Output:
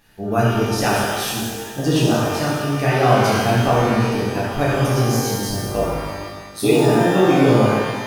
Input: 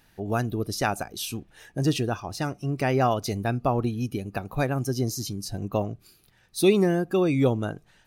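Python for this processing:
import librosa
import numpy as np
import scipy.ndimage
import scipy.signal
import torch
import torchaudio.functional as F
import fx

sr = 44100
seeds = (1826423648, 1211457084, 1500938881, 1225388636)

y = fx.ring_mod(x, sr, carrier_hz=55.0, at=(5.64, 6.94))
y = fx.vibrato(y, sr, rate_hz=2.7, depth_cents=5.7)
y = fx.rev_shimmer(y, sr, seeds[0], rt60_s=1.5, semitones=12, shimmer_db=-8, drr_db=-7.5)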